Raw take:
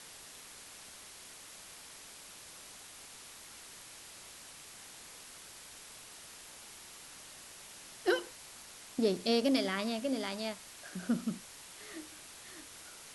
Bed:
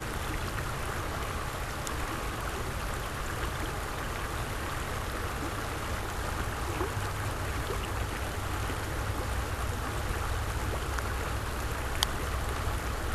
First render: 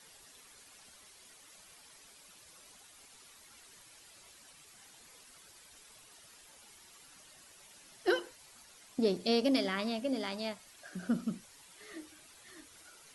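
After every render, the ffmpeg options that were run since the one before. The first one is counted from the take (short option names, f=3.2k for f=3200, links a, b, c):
-af "afftdn=nr=10:nf=-52"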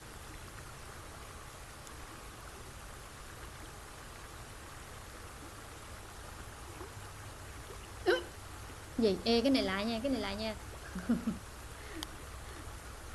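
-filter_complex "[1:a]volume=-15dB[a];[0:a][a]amix=inputs=2:normalize=0"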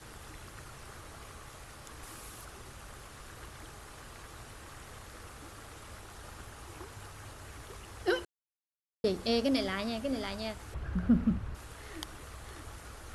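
-filter_complex "[0:a]asettb=1/sr,asplit=3[a][b][c];[a]atrim=end=2.034[d];[b]atrim=start=2.03:end=2.45,asetpts=PTS-STARTPTS,afade=t=in:d=0.004:c=qsin,afade=t=out:st=0.416:d=0.004:c=qsin,highshelf=f=6.8k:g=10.5[e];[c]atrim=start=2.446[f];[d][e]acrossfade=d=0.004:c1=hsin:c2=qsin[g];[g][f]acrossfade=d=0.004:c1=qsin:c2=hsin,asettb=1/sr,asplit=3[h][i][j];[h]atrim=end=10.744[k];[i]atrim=start=10.74:end=11.55,asetpts=PTS-STARTPTS,afade=t=in:d=0.004:c=qsin,afade=t=out:st=0.806:d=0.004:c=qsin,bass=f=250:g=12,treble=f=4k:g=-14[l];[j]atrim=start=11.546[m];[k][l]acrossfade=d=0.004:c1=hsin:c2=qsin[n];[n][m]acrossfade=d=0.004:c1=qsin:c2=hsin,asplit=3[o][p][q];[o]atrim=end=8.25,asetpts=PTS-STARTPTS,afade=t=out:st=8.246:d=0.004:c=hsin[r];[p]atrim=start=8.25:end=9.04,asetpts=PTS-STARTPTS,volume=0[s];[q]atrim=start=9.04,asetpts=PTS-STARTPTS,afade=t=in:d=0.004:c=hsin[t];[r][s][t]concat=n=3:v=0:a=1"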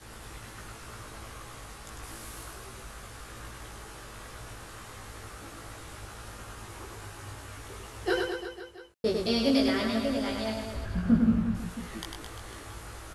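-filter_complex "[0:a]asplit=2[a][b];[b]adelay=18,volume=-2dB[c];[a][c]amix=inputs=2:normalize=0,aecho=1:1:100|215|347.2|499.3|674.2:0.631|0.398|0.251|0.158|0.1"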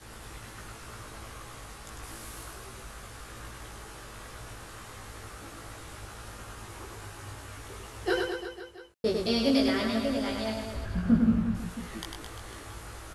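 -af anull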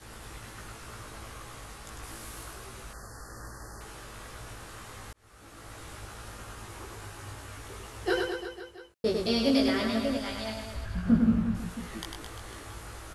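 -filter_complex "[0:a]asettb=1/sr,asplit=3[a][b][c];[a]atrim=end=2.934[d];[b]atrim=start=2.93:end=3.81,asetpts=PTS-STARTPTS,afade=t=in:d=0.004:c=qsin,afade=t=out:st=0.876:d=0.004:c=qsin,asuperstop=centerf=2900:order=20:qfactor=1.2[e];[c]atrim=start=3.806[f];[d][e]acrossfade=d=0.004:c1=hsin:c2=qsin[g];[g][f]acrossfade=d=0.004:c1=qsin:c2=hsin,asettb=1/sr,asplit=3[h][i][j];[h]atrim=end=10.174[k];[i]atrim=start=10.17:end=11.07,asetpts=PTS-STARTPTS,afade=t=in:d=0.004:c=qsin,afade=t=out:st=0.896:d=0.004:c=qsin,equalizer=f=340:w=0.65:g=-7[l];[j]atrim=start=11.066[m];[k][l]acrossfade=d=0.004:c1=hsin:c2=qsin[n];[n][m]acrossfade=d=0.004:c1=qsin:c2=hsin,asplit=2[o][p];[o]atrim=end=5.13,asetpts=PTS-STARTPTS,afade=t=out:st=5.126:d=0.004:c=hsin[q];[p]atrim=start=5.13,asetpts=PTS-STARTPTS,afade=t=in:d=0.71[r];[q][r]concat=n=2:v=0:a=1"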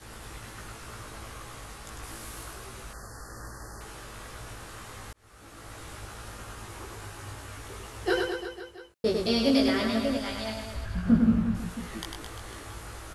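-af "volume=1.5dB"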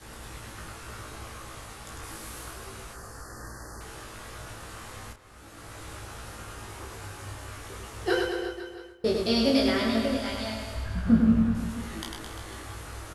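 -filter_complex "[0:a]asplit=2[a][b];[b]adelay=31,volume=-7dB[c];[a][c]amix=inputs=2:normalize=0,asplit=2[d][e];[e]adelay=281,lowpass=f=3.1k:p=1,volume=-12dB,asplit=2[f][g];[g]adelay=281,lowpass=f=3.1k:p=1,volume=0.24,asplit=2[h][i];[i]adelay=281,lowpass=f=3.1k:p=1,volume=0.24[j];[d][f][h][j]amix=inputs=4:normalize=0"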